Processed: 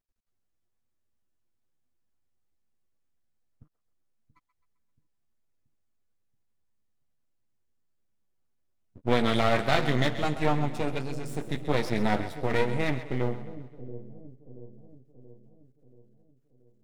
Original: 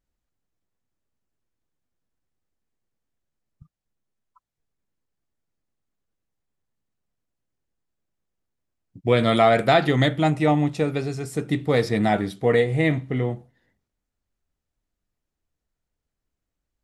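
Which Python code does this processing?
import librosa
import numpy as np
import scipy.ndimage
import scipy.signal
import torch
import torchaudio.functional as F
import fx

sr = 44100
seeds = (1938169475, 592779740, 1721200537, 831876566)

y = fx.chorus_voices(x, sr, voices=6, hz=0.49, base_ms=11, depth_ms=3.1, mix_pct=40)
y = np.maximum(y, 0.0)
y = fx.echo_split(y, sr, split_hz=500.0, low_ms=680, high_ms=131, feedback_pct=52, wet_db=-12.5)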